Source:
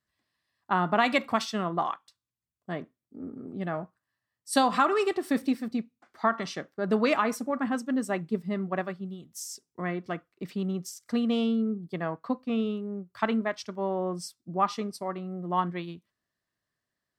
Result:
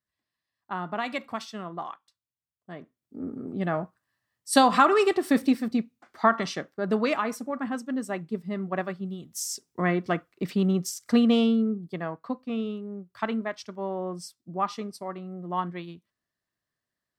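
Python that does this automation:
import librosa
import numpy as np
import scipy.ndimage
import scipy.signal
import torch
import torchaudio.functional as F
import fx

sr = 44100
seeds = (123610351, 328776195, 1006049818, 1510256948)

y = fx.gain(x, sr, db=fx.line((2.76, -7.0), (3.19, 4.5), (6.39, 4.5), (7.19, -2.0), (8.41, -2.0), (9.52, 7.0), (11.18, 7.0), (12.16, -2.0)))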